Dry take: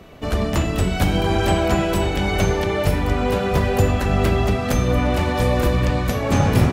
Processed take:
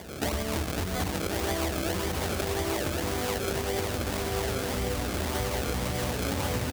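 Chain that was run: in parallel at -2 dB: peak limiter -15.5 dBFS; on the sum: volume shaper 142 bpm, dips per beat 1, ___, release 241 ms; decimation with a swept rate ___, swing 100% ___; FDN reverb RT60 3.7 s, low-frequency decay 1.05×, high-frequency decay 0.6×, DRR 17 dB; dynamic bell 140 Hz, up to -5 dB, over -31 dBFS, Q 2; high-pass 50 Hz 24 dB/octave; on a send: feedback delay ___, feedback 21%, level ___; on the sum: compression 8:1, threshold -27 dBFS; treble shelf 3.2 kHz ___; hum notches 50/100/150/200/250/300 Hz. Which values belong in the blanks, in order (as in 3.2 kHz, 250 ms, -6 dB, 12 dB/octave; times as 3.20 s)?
-5 dB, 32×, 1.8 Hz, 1080 ms, -3.5 dB, +6 dB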